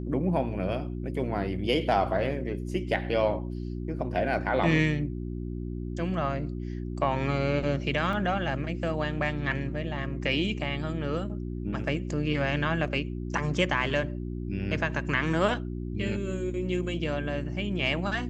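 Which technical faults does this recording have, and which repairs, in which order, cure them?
mains hum 60 Hz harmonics 6 −34 dBFS
0:08.13: drop-out 2.3 ms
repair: hum removal 60 Hz, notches 6
repair the gap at 0:08.13, 2.3 ms

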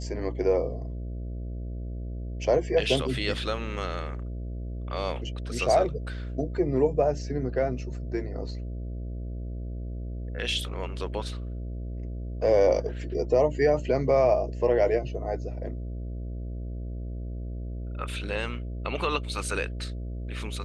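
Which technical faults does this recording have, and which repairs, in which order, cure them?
mains buzz 60 Hz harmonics 11 −34 dBFS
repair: hum removal 60 Hz, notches 11

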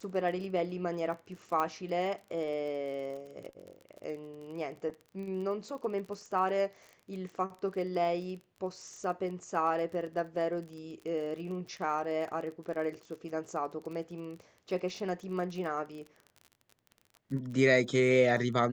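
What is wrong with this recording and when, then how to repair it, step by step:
surface crackle 32 per second −41 dBFS
0:01.60: click −19 dBFS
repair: click removal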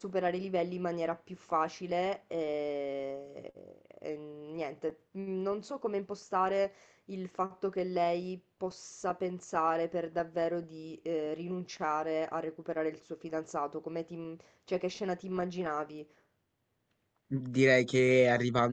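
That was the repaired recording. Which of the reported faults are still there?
0:01.60: click

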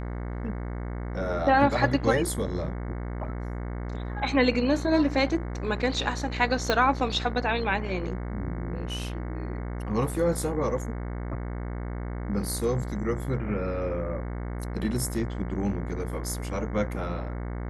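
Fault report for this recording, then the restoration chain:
mains buzz 60 Hz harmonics 37 −33 dBFS
0:06.70: click −10 dBFS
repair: click removal
hum removal 60 Hz, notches 37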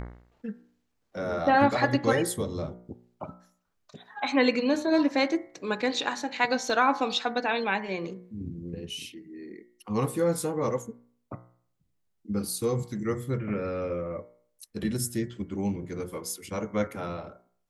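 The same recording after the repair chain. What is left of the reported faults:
0:06.70: click

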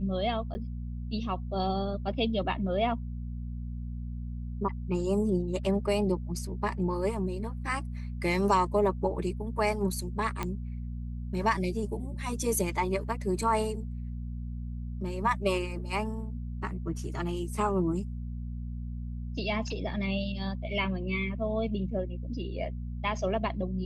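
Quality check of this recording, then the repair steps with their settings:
mains hum 60 Hz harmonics 4 −36 dBFS
0:00.54–0:00.55: drop-out 10 ms
0:10.43: click −17 dBFS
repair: click removal
hum removal 60 Hz, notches 4
repair the gap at 0:00.54, 10 ms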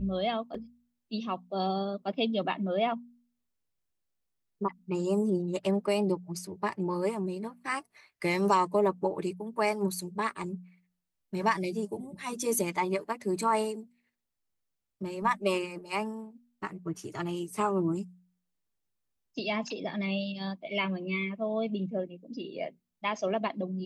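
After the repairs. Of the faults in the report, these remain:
none of them is left

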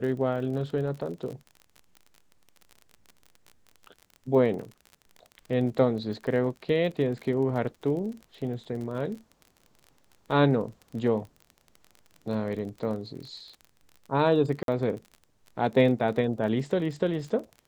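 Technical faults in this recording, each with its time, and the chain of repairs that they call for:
surface crackle 33 per second −36 dBFS
0:14.63–0:14.68: drop-out 52 ms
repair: click removal
repair the gap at 0:14.63, 52 ms

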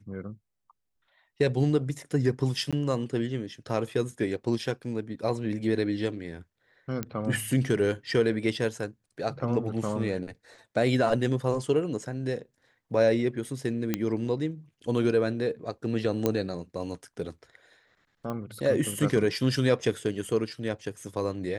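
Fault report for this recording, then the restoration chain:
0:02.71–0:02.73: drop-out 16 ms
0:07.03: click −16 dBFS
0:13.94: click −12 dBFS
0:16.26: click −11 dBFS
0:18.30: click −22 dBFS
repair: click removal
repair the gap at 0:02.71, 16 ms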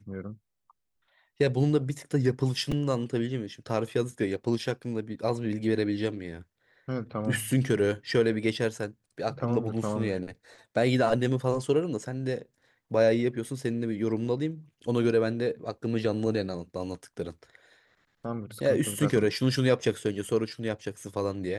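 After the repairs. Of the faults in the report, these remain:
none of them is left

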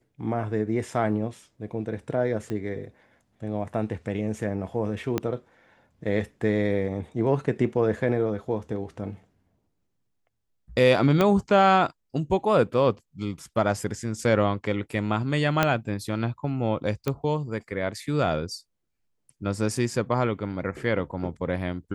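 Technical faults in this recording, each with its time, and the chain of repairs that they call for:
0:02.50: click −21 dBFS
0:05.18: click −11 dBFS
0:11.21: click −9 dBFS
0:15.63: click −6 dBFS
0:17.08: click −13 dBFS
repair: click removal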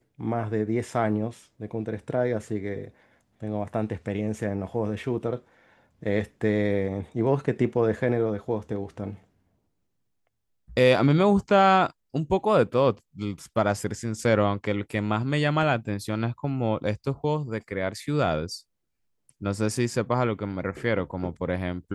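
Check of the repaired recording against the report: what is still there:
0:02.50: click
0:05.18: click
0:11.21: click
0:15.63: click

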